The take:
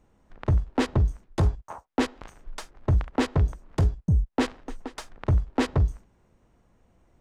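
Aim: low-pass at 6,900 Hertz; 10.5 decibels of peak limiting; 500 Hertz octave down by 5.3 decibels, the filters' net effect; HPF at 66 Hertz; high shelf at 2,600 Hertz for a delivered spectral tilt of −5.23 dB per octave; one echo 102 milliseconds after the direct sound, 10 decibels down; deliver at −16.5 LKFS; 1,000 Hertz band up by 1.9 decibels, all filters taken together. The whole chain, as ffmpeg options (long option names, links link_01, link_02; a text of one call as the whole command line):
ffmpeg -i in.wav -af "highpass=66,lowpass=6900,equalizer=frequency=500:width_type=o:gain=-8,equalizer=frequency=1000:width_type=o:gain=3.5,highshelf=frequency=2600:gain=8.5,alimiter=limit=-23.5dB:level=0:latency=1,aecho=1:1:102:0.316,volume=19dB" out.wav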